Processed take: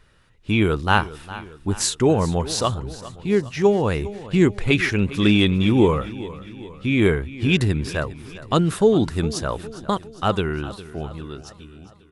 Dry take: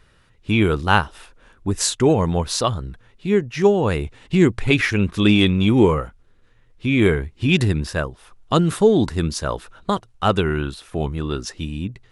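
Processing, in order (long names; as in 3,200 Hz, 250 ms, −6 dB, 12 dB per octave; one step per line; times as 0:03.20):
fade-out on the ending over 2.13 s
on a send: repeating echo 406 ms, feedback 53%, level −16.5 dB
on the sum: level −1.5 dB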